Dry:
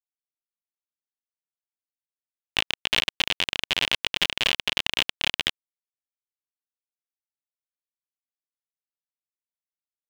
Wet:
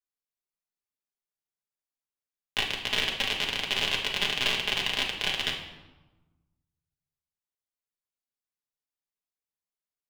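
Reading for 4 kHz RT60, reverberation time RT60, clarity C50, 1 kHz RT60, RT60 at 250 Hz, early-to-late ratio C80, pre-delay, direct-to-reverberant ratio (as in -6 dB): 0.75 s, 1.2 s, 5.5 dB, 1.2 s, 1.6 s, 9.0 dB, 5 ms, -2.5 dB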